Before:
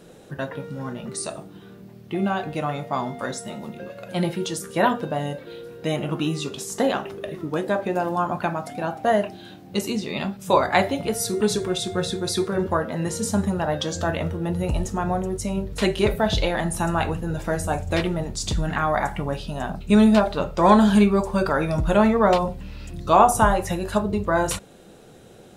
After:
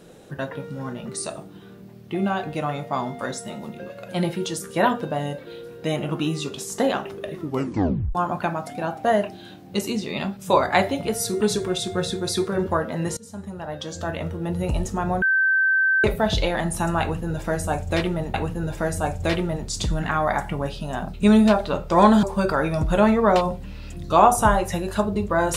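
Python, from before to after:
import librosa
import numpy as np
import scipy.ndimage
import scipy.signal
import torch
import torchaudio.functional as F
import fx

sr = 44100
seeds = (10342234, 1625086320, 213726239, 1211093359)

y = fx.edit(x, sr, fx.tape_stop(start_s=7.45, length_s=0.7),
    fx.fade_in_from(start_s=13.17, length_s=1.53, floor_db=-21.5),
    fx.bleep(start_s=15.22, length_s=0.82, hz=1550.0, db=-16.0),
    fx.repeat(start_s=17.01, length_s=1.33, count=2),
    fx.cut(start_s=20.9, length_s=0.3), tone=tone)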